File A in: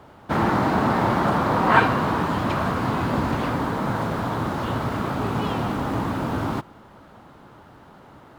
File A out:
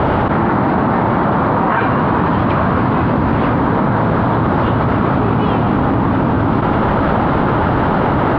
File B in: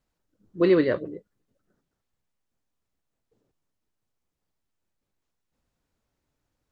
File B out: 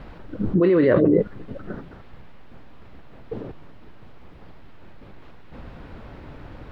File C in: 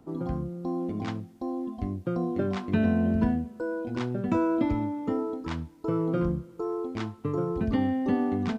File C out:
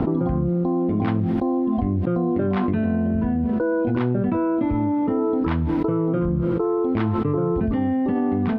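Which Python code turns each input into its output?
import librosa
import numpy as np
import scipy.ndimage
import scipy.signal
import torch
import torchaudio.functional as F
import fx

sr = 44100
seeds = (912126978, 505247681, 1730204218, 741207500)

y = fx.air_absorb(x, sr, metres=410.0)
y = fx.env_flatten(y, sr, amount_pct=100)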